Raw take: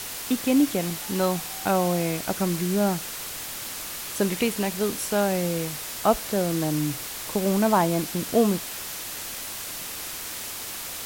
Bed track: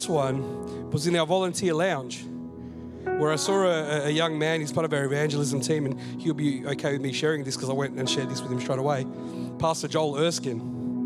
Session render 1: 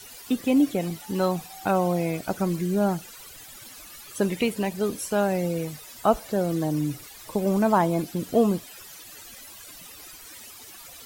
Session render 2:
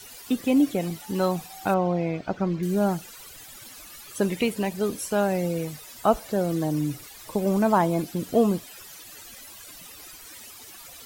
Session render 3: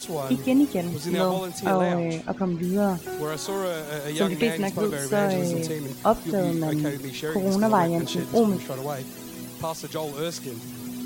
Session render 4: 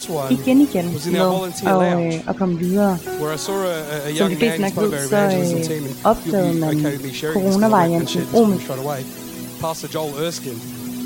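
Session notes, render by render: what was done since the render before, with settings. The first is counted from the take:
denoiser 15 dB, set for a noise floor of -35 dBFS
1.74–2.63 air absorption 190 m
add bed track -5.5 dB
gain +6.5 dB; limiter -3 dBFS, peak gain reduction 2 dB

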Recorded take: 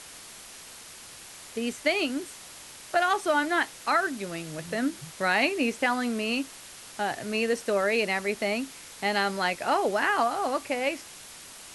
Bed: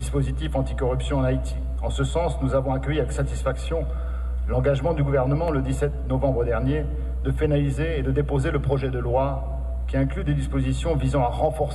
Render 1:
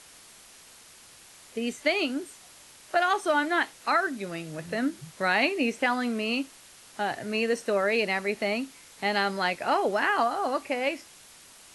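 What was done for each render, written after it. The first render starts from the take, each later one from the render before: noise print and reduce 6 dB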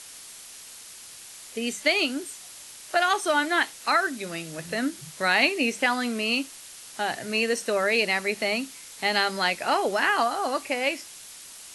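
high shelf 2600 Hz +9.5 dB; notches 50/100/150/200 Hz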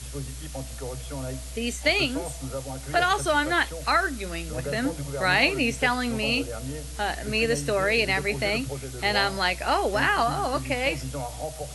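add bed -11.5 dB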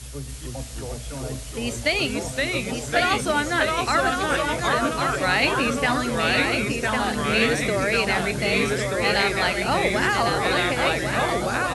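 echo 1.101 s -5 dB; echoes that change speed 0.291 s, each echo -2 st, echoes 2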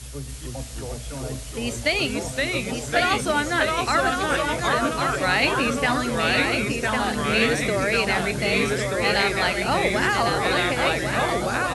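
nothing audible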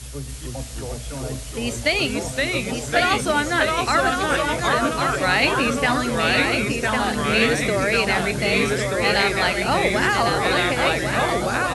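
gain +2 dB

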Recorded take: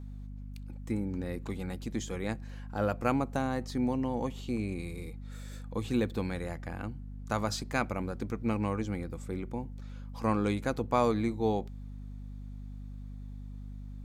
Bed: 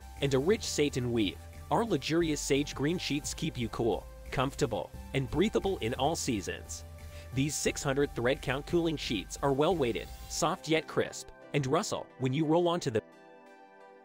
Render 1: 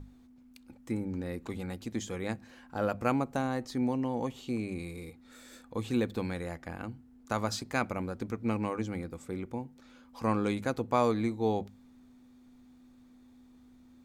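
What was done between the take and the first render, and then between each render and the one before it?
notches 50/100/150/200 Hz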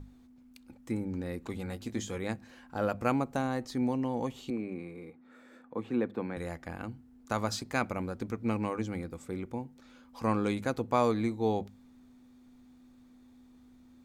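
1.64–2.18 doubler 20 ms -8 dB; 4.5–6.37 three-band isolator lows -19 dB, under 150 Hz, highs -20 dB, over 2300 Hz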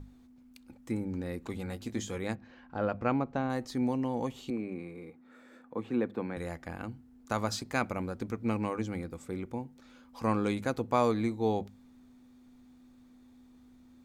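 2.35–3.5 air absorption 200 m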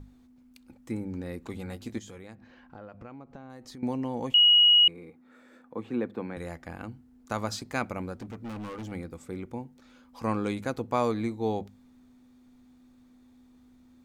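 1.98–3.83 compressor, threshold -42 dBFS; 4.34–4.88 bleep 2900 Hz -15 dBFS; 8.16–8.92 hard clip -35.5 dBFS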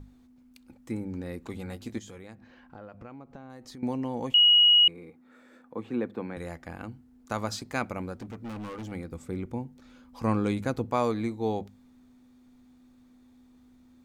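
9.11–10.9 low shelf 230 Hz +7 dB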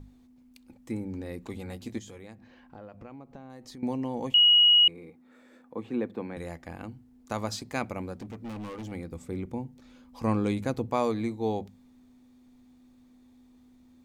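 bell 1400 Hz -5 dB 0.46 oct; notches 60/120/180 Hz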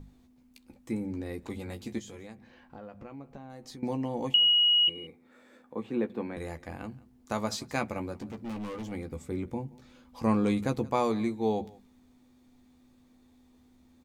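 doubler 14 ms -8 dB; echo 0.175 s -22.5 dB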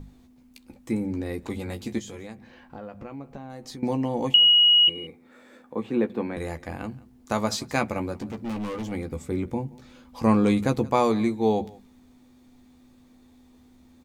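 gain +6 dB

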